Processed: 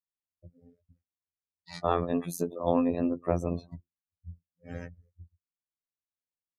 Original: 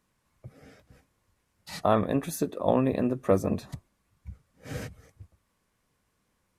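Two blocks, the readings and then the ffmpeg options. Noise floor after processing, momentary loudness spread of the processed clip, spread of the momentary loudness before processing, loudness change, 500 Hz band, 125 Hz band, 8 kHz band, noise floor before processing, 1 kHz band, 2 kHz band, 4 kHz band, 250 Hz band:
under -85 dBFS, 23 LU, 18 LU, -3.0 dB, -3.5 dB, -3.5 dB, -4.5 dB, -75 dBFS, -2.5 dB, -5.5 dB, -5.0 dB, -2.0 dB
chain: -af "afftfilt=real='hypot(re,im)*cos(PI*b)':imag='0':win_size=2048:overlap=0.75,afftdn=nr=34:nf=-47,volume=1dB"

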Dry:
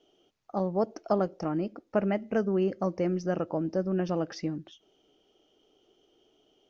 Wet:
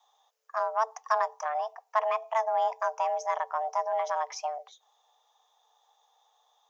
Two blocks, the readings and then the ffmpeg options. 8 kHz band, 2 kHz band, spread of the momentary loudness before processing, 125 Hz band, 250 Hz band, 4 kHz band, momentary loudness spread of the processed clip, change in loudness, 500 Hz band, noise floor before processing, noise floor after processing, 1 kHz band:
n/a, +5.0 dB, 5 LU, under -40 dB, under -40 dB, +1.5 dB, 6 LU, 0.0 dB, -2.5 dB, -70 dBFS, -72 dBFS, +10.5 dB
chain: -af "aeval=exprs='0.237*(cos(1*acos(clip(val(0)/0.237,-1,1)))-cos(1*PI/2))+0.00668*(cos(7*acos(clip(val(0)/0.237,-1,1)))-cos(7*PI/2))+0.00188*(cos(8*acos(clip(val(0)/0.237,-1,1)))-cos(8*PI/2))':c=same,aexciter=amount=2.2:drive=3.7:freq=4.8k,afreqshift=440"

